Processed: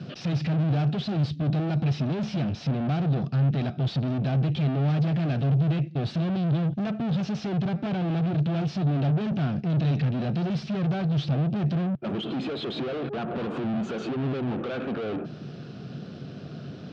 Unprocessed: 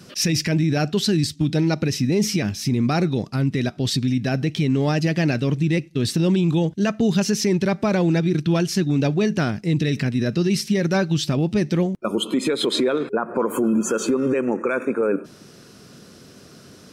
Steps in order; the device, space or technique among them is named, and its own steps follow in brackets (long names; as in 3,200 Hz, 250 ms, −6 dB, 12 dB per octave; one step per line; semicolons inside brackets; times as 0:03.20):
guitar amplifier (tube saturation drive 35 dB, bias 0.5; bass and treble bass +8 dB, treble +3 dB; loudspeaker in its box 110–3,600 Hz, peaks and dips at 140 Hz +7 dB, 700 Hz +6 dB, 1,000 Hz −6 dB, 2,000 Hz −6 dB)
level +4 dB